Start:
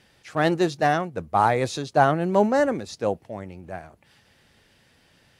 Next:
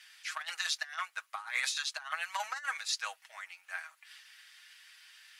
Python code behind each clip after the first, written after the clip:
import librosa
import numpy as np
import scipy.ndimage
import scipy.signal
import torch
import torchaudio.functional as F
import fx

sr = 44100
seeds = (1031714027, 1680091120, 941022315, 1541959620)

y = scipy.signal.sosfilt(scipy.signal.cheby2(4, 60, 400.0, 'highpass', fs=sr, output='sos'), x)
y = y + 0.65 * np.pad(y, (int(6.3 * sr / 1000.0), 0))[:len(y)]
y = fx.over_compress(y, sr, threshold_db=-35.0, ratio=-0.5)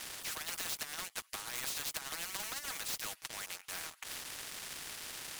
y = fx.leveller(x, sr, passes=3)
y = fx.spectral_comp(y, sr, ratio=4.0)
y = y * librosa.db_to_amplitude(-3.0)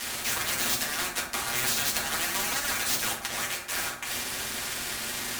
y = fx.rev_fdn(x, sr, rt60_s=0.78, lf_ratio=1.25, hf_ratio=0.5, size_ms=25.0, drr_db=-3.5)
y = y * librosa.db_to_amplitude(8.0)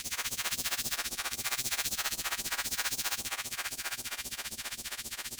y = fx.spec_dilate(x, sr, span_ms=480)
y = fx.phaser_stages(y, sr, stages=2, low_hz=120.0, high_hz=1600.0, hz=3.8, feedback_pct=40)
y = y * (1.0 - 0.89 / 2.0 + 0.89 / 2.0 * np.cos(2.0 * np.pi * 15.0 * (np.arange(len(y)) / sr)))
y = y * librosa.db_to_amplitude(-9.0)